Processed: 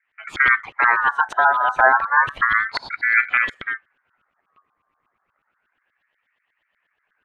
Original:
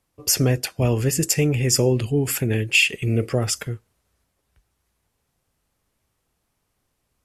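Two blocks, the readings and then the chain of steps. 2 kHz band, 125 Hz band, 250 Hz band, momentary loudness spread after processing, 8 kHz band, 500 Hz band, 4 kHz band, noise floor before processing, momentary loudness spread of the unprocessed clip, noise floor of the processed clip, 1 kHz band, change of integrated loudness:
+10.5 dB, under -25 dB, under -20 dB, 11 LU, under -25 dB, -5.5 dB, -10.5 dB, -74 dBFS, 7 LU, -74 dBFS, +21.0 dB, +2.5 dB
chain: high shelf 3100 Hz +11 dB; LFO low-pass saw up 8.3 Hz 270–1600 Hz; tilt shelf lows +3 dB, about 1500 Hz; ring modulator with a swept carrier 1500 Hz, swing 25%, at 0.31 Hz; gain +1.5 dB

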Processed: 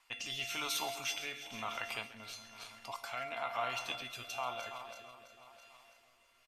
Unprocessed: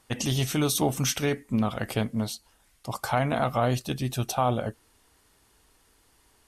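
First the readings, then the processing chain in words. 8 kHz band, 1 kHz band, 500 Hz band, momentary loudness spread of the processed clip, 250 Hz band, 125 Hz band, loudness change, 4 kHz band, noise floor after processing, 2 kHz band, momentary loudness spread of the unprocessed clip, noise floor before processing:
-12.0 dB, -10.5 dB, -15.5 dB, 20 LU, -25.5 dB, -30.0 dB, -12.0 dB, -5.5 dB, -69 dBFS, -4.5 dB, 10 LU, -64 dBFS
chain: regenerating reverse delay 0.165 s, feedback 72%, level -12.5 dB; fifteen-band EQ 160 Hz -8 dB, 1000 Hz +11 dB, 2500 Hz +11 dB, 10000 Hz -9 dB; in parallel at +0.5 dB: compressor, threshold -35 dBFS, peak gain reduction 20 dB; on the sum: resonator 690 Hz, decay 0.43 s, mix 90%; rotary speaker horn 1 Hz; tilt shelf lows -8.5 dB, about 730 Hz; on a send: echo 0.135 s -16.5 dB

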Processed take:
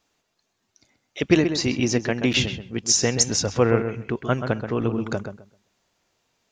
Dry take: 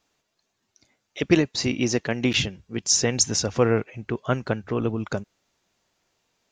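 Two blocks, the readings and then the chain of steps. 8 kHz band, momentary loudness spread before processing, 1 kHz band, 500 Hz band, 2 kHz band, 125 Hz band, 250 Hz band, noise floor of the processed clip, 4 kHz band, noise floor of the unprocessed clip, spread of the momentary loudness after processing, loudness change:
+1.0 dB, 11 LU, +1.5 dB, +1.5 dB, +1.5 dB, +2.0 dB, +1.5 dB, -75 dBFS, +1.0 dB, -77 dBFS, 10 LU, +1.5 dB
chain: darkening echo 0.13 s, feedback 21%, low-pass 2100 Hz, level -7.5 dB; gain +1 dB

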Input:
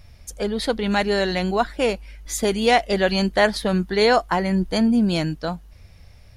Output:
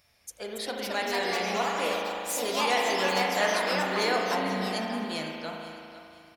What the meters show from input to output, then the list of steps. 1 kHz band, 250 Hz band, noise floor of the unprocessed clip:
-4.5 dB, -13.5 dB, -47 dBFS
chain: HPF 720 Hz 6 dB/oct; high shelf 10000 Hz +7.5 dB; echoes that change speed 0.326 s, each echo +3 st, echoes 3; on a send: feedback echo 0.503 s, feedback 31%, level -14.5 dB; on the sum: spring tank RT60 2.6 s, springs 37 ms, chirp 65 ms, DRR -0.5 dB; gain -8.5 dB

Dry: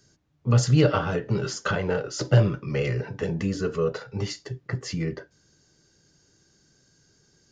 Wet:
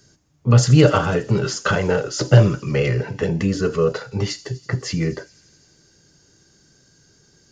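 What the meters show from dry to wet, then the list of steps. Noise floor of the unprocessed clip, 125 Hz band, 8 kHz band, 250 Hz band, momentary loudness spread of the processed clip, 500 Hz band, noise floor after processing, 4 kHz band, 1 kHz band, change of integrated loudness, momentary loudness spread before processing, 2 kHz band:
-64 dBFS, +6.5 dB, +7.0 dB, +6.5 dB, 12 LU, +6.5 dB, -57 dBFS, +6.5 dB, +6.5 dB, +6.5 dB, 12 LU, +6.5 dB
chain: thin delay 83 ms, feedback 79%, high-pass 5000 Hz, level -14 dB; gain +6.5 dB

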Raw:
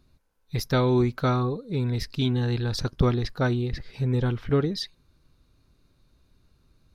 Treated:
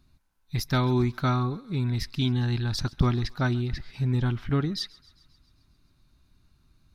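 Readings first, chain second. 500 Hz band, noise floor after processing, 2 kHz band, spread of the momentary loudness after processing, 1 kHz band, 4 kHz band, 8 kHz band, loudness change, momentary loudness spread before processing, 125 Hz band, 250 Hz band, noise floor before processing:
-6.5 dB, -66 dBFS, 0.0 dB, 7 LU, -1.0 dB, 0.0 dB, 0.0 dB, -1.5 dB, 8 LU, 0.0 dB, -1.5 dB, -66 dBFS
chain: bell 480 Hz -14.5 dB 0.48 oct; thinning echo 0.134 s, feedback 64%, high-pass 780 Hz, level -22 dB

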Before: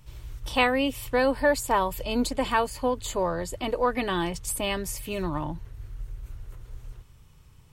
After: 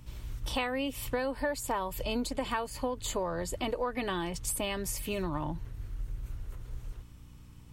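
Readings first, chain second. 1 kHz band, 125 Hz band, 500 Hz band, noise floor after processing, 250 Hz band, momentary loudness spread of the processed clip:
-8.5 dB, -3.0 dB, -7.5 dB, -51 dBFS, -6.5 dB, 13 LU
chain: hum 60 Hz, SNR 25 dB; compressor 6:1, threshold -29 dBFS, peak gain reduction 12 dB

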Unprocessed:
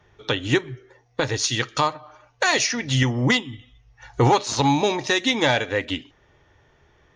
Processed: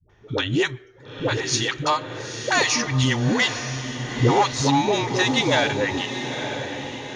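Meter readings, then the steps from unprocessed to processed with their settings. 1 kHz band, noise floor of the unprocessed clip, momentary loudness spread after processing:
+0.5 dB, -60 dBFS, 10 LU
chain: dispersion highs, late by 96 ms, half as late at 410 Hz; on a send: diffused feedback echo 0.908 s, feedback 51%, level -8.5 dB

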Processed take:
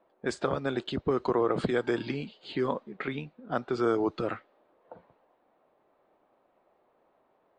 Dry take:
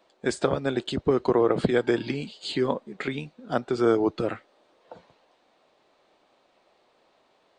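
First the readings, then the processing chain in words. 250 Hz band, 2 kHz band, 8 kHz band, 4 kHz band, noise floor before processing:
-5.0 dB, -3.5 dB, n/a, -6.0 dB, -66 dBFS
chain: low-pass opened by the level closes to 1400 Hz, open at -18.5 dBFS; in parallel at 0 dB: limiter -18.5 dBFS, peak gain reduction 10.5 dB; on the sum: dynamic EQ 1200 Hz, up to +5 dB, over -38 dBFS, Q 2; gain -9 dB

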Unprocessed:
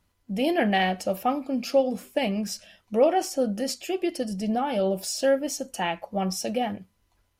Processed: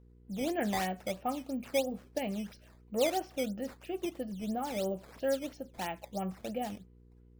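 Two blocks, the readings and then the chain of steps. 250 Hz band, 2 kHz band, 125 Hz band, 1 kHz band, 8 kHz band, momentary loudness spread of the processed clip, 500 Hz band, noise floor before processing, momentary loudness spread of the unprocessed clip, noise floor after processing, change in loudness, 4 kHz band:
-9.0 dB, -10.0 dB, -8.5 dB, -9.5 dB, -11.0 dB, 8 LU, -9.5 dB, -70 dBFS, 8 LU, -59 dBFS, -9.5 dB, -10.0 dB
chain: air absorption 260 m; decimation with a swept rate 9×, swing 160% 3 Hz; buzz 60 Hz, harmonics 8, -50 dBFS -6 dB/oct; gain -8.5 dB

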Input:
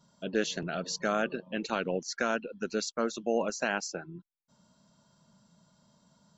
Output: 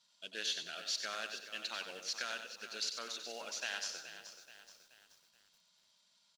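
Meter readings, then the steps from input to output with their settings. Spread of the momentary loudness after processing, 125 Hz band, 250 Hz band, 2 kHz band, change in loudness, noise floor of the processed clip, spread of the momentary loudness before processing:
15 LU, under -25 dB, -25.0 dB, -7.0 dB, -7.5 dB, -73 dBFS, 6 LU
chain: CVSD 64 kbps; band-pass 3800 Hz, Q 1.6; on a send: feedback echo 94 ms, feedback 36%, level -8 dB; on the sum: lo-fi delay 0.427 s, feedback 55%, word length 10-bit, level -11.5 dB; gain +2 dB

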